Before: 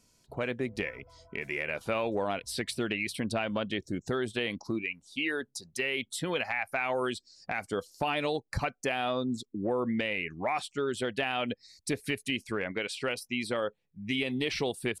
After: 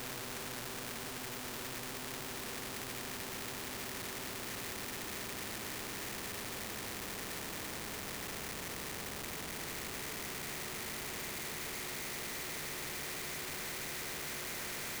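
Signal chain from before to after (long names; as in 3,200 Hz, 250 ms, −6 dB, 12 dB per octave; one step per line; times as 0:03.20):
extreme stretch with random phases 13×, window 1.00 s, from 0:00.47
phaser with its sweep stopped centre 2,900 Hz, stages 6
notch comb filter 560 Hz
comparator with hysteresis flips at −47.5 dBFS
every bin compressed towards the loudest bin 2 to 1
level +5.5 dB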